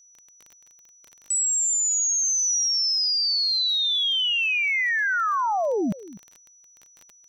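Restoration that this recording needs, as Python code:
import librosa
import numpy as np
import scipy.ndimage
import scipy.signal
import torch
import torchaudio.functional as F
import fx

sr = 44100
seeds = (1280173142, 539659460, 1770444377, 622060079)

y = fx.fix_declick_ar(x, sr, threshold=6.5)
y = fx.notch(y, sr, hz=5900.0, q=30.0)
y = fx.fix_echo_inverse(y, sr, delay_ms=251, level_db=-17.5)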